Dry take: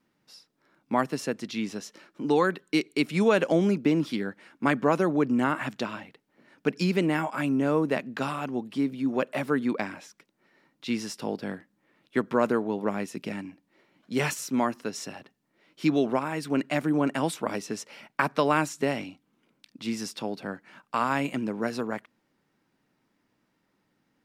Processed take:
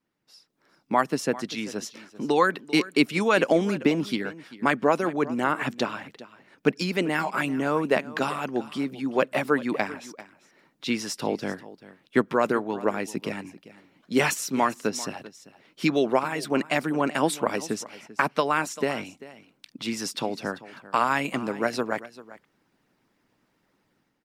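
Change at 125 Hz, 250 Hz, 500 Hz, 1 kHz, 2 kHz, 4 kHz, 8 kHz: -2.0 dB, -0.5 dB, +2.0 dB, +3.5 dB, +4.5 dB, +4.5 dB, +5.0 dB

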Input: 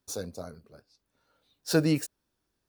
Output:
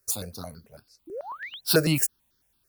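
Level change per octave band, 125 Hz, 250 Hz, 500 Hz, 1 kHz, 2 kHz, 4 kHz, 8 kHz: +2.5 dB, -0.5 dB, +3.5 dB, +7.0 dB, +6.5 dB, +8.0 dB, +9.5 dB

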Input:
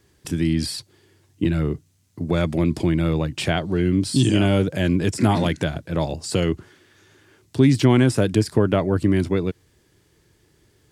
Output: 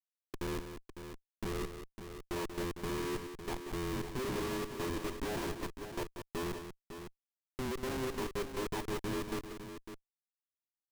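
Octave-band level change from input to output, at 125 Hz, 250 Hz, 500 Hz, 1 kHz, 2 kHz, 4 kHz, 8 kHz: -24.0 dB, -20.0 dB, -15.5 dB, -12.0 dB, -13.5 dB, -15.5 dB, -13.0 dB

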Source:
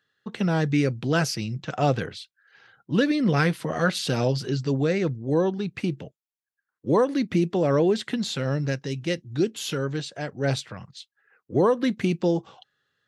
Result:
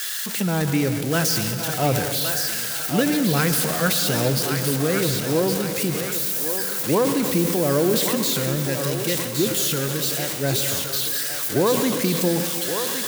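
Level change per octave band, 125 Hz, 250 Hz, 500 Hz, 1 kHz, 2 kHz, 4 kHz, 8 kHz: +1.5 dB, +1.5 dB, +2.0 dB, +2.5 dB, +4.0 dB, +9.0 dB, +16.5 dB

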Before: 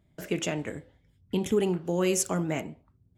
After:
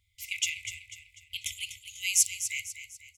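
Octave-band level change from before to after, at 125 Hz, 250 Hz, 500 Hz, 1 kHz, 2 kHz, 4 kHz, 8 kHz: -25.0 dB, under -40 dB, under -40 dB, under -40 dB, +4.5 dB, +6.0 dB, +6.5 dB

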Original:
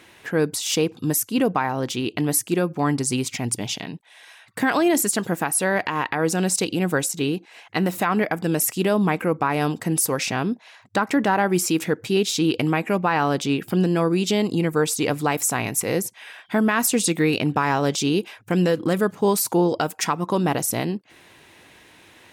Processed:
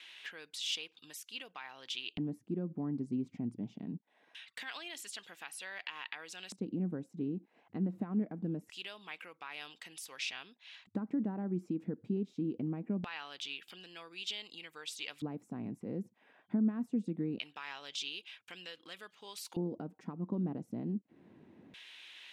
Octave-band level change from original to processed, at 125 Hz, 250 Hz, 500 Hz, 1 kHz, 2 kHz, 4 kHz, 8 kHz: -16.0 dB, -15.0 dB, -23.0 dB, -26.5 dB, -19.0 dB, -12.0 dB, -26.0 dB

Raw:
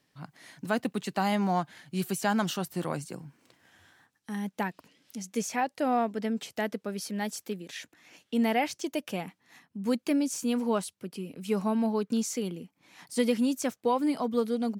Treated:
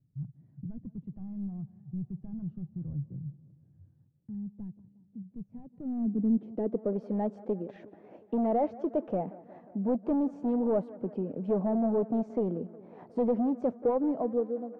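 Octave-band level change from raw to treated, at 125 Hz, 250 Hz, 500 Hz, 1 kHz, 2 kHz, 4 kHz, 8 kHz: +0.5 dB, -1.0 dB, +0.5 dB, -7.0 dB, under -20 dB, under -30 dB, under -40 dB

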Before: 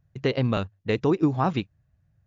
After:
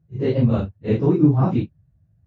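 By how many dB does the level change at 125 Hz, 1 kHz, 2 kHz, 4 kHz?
+8.5 dB, -2.5 dB, -6.5 dB, no reading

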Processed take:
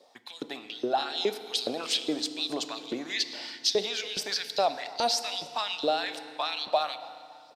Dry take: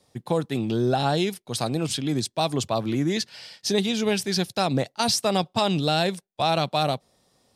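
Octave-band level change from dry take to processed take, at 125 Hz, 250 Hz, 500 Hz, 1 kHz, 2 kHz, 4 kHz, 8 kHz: -28.0 dB, -12.5 dB, -6.0 dB, -4.5 dB, -3.5 dB, -1.0 dB, -5.0 dB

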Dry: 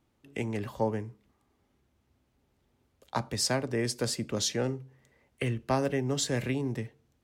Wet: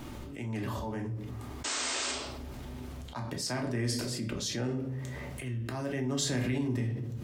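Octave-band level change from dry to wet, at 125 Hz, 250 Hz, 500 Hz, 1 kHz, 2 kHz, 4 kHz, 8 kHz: +1.0 dB, -0.5 dB, -5.5 dB, -4.5 dB, 0.0 dB, -0.5 dB, -0.5 dB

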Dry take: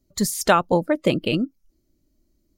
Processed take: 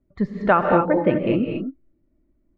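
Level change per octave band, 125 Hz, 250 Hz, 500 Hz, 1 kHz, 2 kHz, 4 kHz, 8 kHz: +1.0 dB, +2.0 dB, +2.0 dB, +2.0 dB, 0.0 dB, -13.5 dB, under -40 dB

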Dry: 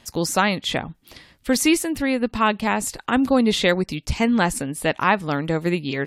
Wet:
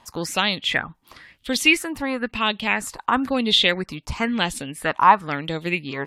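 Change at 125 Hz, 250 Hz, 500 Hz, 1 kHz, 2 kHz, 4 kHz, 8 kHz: -5.5 dB, -5.5 dB, -4.5 dB, +2.5 dB, +2.0 dB, +5.5 dB, -4.5 dB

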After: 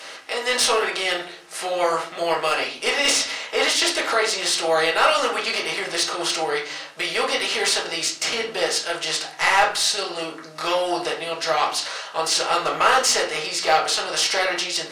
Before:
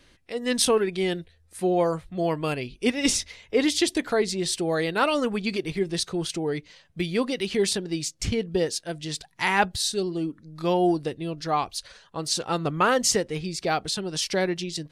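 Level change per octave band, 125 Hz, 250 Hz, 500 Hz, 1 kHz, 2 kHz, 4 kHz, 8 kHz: -13.5 dB, -8.0 dB, +1.5 dB, +6.5 dB, +8.5 dB, +8.5 dB, +5.5 dB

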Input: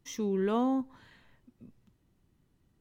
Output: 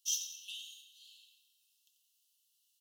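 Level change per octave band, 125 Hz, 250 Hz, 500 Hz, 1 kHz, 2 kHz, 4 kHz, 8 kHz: under -40 dB, under -40 dB, under -40 dB, under -40 dB, -7.5 dB, +8.5 dB, no reading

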